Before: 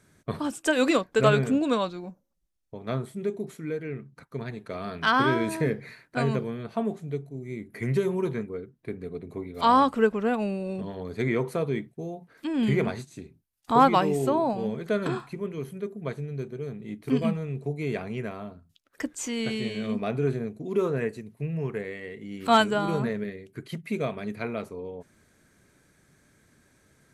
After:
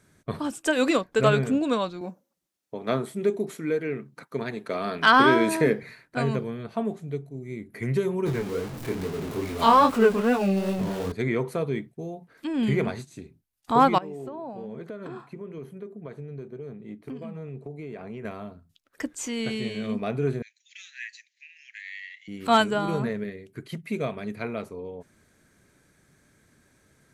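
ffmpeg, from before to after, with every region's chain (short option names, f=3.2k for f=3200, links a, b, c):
-filter_complex "[0:a]asettb=1/sr,asplit=3[a][b][c];[a]atrim=end=2.014[d];[b]atrim=start=2.01:end=5.83,asetpts=PTS-STARTPTS,afade=t=in:d=0.004:c=qsin,afade=t=out:st=3.816:d=0.004:c=qsin,highpass=210,acontrast=56[e];[c]atrim=start=5.826[f];[d][e]acrossfade=d=0.004:c1=hsin:c2=qsin[g];[g][f]acrossfade=d=0.004:c1=qsin:c2=hsin,asettb=1/sr,asplit=3[h][i][j];[h]atrim=end=8.264[k];[i]atrim=start=8.26:end=11.12,asetpts=PTS-STARTPTS,afade=t=in:d=0.004:c=qsin,afade=t=out:st=2.856:d=0.004:c=qsin,aeval=exprs='val(0)+0.5*0.0211*sgn(val(0))':c=same,acontrast=32,flanger=delay=19.5:depth=6.9:speed=2.4[l];[j]atrim=start=11.116[m];[k][l]acrossfade=d=0.004:c1=hsin:c2=qsin[n];[n][m]acrossfade=d=0.004:c1=qsin:c2=hsin,asettb=1/sr,asplit=3[o][p][q];[o]atrim=end=13.984[r];[p]atrim=start=13.98:end=18.25,asetpts=PTS-STARTPTS,afade=t=in:d=0.004:c=qsin,afade=t=out:st=4.266:d=0.004:c=qsin,highpass=f=190:p=1,acompressor=threshold=-32dB:ratio=10:attack=3.2:release=140:knee=1:detection=peak,highshelf=f=2.1k:g=-11.5[s];[q]atrim=start=18.246[t];[r][s]acrossfade=d=0.004:c1=hsin:c2=qsin[u];[u][t]acrossfade=d=0.004:c1=qsin:c2=hsin,asettb=1/sr,asplit=3[v][w][x];[v]atrim=end=20.424[y];[w]atrim=start=20.42:end=22.28,asetpts=PTS-STARTPTS,afade=t=in:d=0.004:c=qsin,afade=t=out:st=1.856:d=0.004:c=qsin,asuperpass=centerf=3500:order=20:qfactor=0.67,highshelf=f=3k:g=9.5[z];[x]atrim=start=22.276[aa];[y][z]acrossfade=d=0.004:c1=hsin:c2=qsin[ab];[ab][aa]acrossfade=d=0.004:c1=qsin:c2=hsin"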